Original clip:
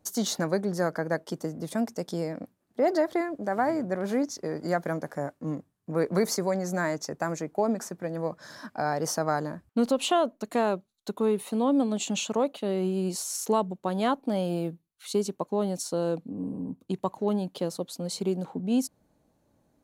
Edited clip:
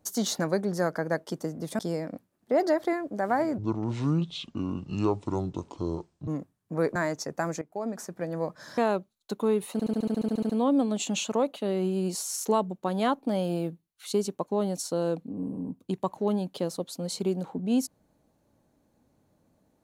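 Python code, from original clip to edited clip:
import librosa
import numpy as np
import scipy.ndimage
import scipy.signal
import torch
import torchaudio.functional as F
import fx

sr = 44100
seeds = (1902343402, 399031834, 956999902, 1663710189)

y = fx.edit(x, sr, fx.cut(start_s=1.79, length_s=0.28),
    fx.speed_span(start_s=3.86, length_s=1.59, speed=0.59),
    fx.cut(start_s=6.13, length_s=0.65),
    fx.fade_in_from(start_s=7.44, length_s=0.6, floor_db=-16.5),
    fx.cut(start_s=8.6, length_s=1.95),
    fx.stutter(start_s=11.5, slice_s=0.07, count=12), tone=tone)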